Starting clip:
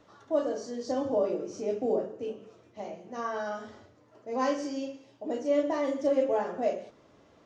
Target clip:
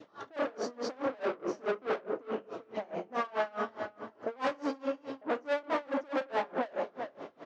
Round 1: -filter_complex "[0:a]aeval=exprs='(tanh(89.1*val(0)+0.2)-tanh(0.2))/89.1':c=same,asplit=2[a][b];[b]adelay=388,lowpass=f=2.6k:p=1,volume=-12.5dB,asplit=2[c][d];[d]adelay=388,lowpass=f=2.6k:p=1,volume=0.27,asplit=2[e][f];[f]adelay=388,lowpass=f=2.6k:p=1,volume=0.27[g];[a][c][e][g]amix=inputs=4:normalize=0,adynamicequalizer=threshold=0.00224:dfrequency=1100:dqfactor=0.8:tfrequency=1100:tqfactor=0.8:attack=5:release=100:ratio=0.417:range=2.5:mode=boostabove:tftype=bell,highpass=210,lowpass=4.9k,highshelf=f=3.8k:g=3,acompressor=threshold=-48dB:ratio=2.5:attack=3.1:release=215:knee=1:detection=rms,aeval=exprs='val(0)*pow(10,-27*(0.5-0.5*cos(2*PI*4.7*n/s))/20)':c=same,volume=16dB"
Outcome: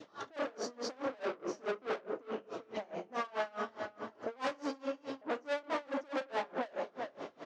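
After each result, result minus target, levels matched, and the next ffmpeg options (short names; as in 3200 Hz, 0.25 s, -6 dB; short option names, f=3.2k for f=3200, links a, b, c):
compressor: peak gain reduction +4.5 dB; 4000 Hz band +4.0 dB
-filter_complex "[0:a]aeval=exprs='(tanh(89.1*val(0)+0.2)-tanh(0.2))/89.1':c=same,asplit=2[a][b];[b]adelay=388,lowpass=f=2.6k:p=1,volume=-12.5dB,asplit=2[c][d];[d]adelay=388,lowpass=f=2.6k:p=1,volume=0.27,asplit=2[e][f];[f]adelay=388,lowpass=f=2.6k:p=1,volume=0.27[g];[a][c][e][g]amix=inputs=4:normalize=0,adynamicequalizer=threshold=0.00224:dfrequency=1100:dqfactor=0.8:tfrequency=1100:tqfactor=0.8:attack=5:release=100:ratio=0.417:range=2.5:mode=boostabove:tftype=bell,highpass=210,lowpass=4.9k,highshelf=f=3.8k:g=3,acompressor=threshold=-41dB:ratio=2.5:attack=3.1:release=215:knee=1:detection=rms,aeval=exprs='val(0)*pow(10,-27*(0.5-0.5*cos(2*PI*4.7*n/s))/20)':c=same,volume=16dB"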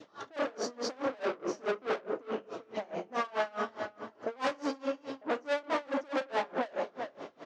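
4000 Hz band +4.0 dB
-filter_complex "[0:a]aeval=exprs='(tanh(89.1*val(0)+0.2)-tanh(0.2))/89.1':c=same,asplit=2[a][b];[b]adelay=388,lowpass=f=2.6k:p=1,volume=-12.5dB,asplit=2[c][d];[d]adelay=388,lowpass=f=2.6k:p=1,volume=0.27,asplit=2[e][f];[f]adelay=388,lowpass=f=2.6k:p=1,volume=0.27[g];[a][c][e][g]amix=inputs=4:normalize=0,adynamicequalizer=threshold=0.00224:dfrequency=1100:dqfactor=0.8:tfrequency=1100:tqfactor=0.8:attack=5:release=100:ratio=0.417:range=2.5:mode=boostabove:tftype=bell,highpass=210,lowpass=4.9k,highshelf=f=3.8k:g=-6,acompressor=threshold=-41dB:ratio=2.5:attack=3.1:release=215:knee=1:detection=rms,aeval=exprs='val(0)*pow(10,-27*(0.5-0.5*cos(2*PI*4.7*n/s))/20)':c=same,volume=16dB"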